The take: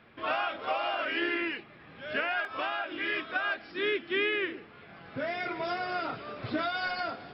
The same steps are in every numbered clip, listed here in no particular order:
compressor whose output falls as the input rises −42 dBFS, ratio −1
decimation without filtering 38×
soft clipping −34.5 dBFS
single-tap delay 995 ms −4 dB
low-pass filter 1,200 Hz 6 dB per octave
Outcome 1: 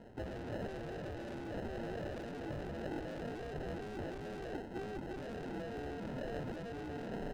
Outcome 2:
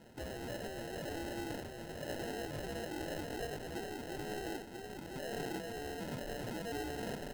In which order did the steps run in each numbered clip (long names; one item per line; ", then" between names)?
single-tap delay, then decimation without filtering, then low-pass filter, then soft clipping, then compressor whose output falls as the input rises
soft clipping, then low-pass filter, then compressor whose output falls as the input rises, then single-tap delay, then decimation without filtering